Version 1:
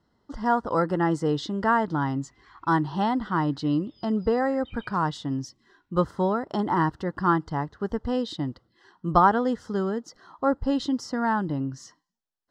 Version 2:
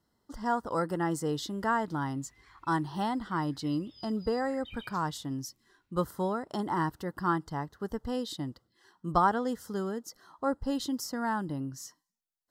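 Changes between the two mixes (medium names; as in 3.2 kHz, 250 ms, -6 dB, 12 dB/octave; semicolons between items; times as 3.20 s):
speech -7.0 dB; master: remove distance through air 130 m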